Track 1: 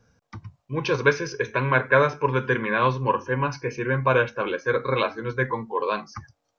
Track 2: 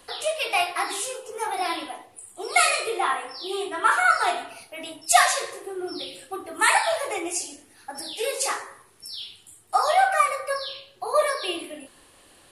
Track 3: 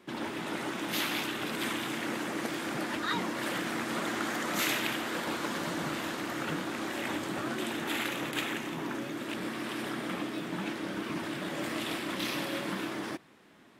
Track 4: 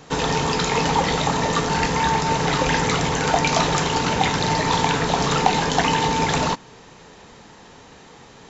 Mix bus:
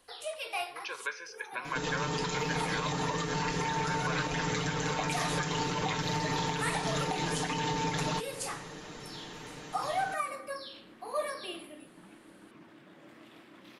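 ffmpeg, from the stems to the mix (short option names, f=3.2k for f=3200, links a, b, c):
-filter_complex "[0:a]highpass=970,volume=-10dB,asplit=2[a][b];[1:a]volume=-12dB[c];[2:a]highshelf=f=4k:g=-9,adelay=1450,volume=-18.5dB[d];[3:a]equalizer=f=820:w=1.5:g=-3.5,aecho=1:1:6.6:0.81,acompressor=threshold=-28dB:ratio=4,adelay=1650,volume=-2dB[e];[b]apad=whole_len=551751[f];[c][f]sidechaincompress=threshold=-47dB:ratio=8:attack=7.1:release=167[g];[a][g][d][e]amix=inputs=4:normalize=0,alimiter=limit=-21.5dB:level=0:latency=1:release=118"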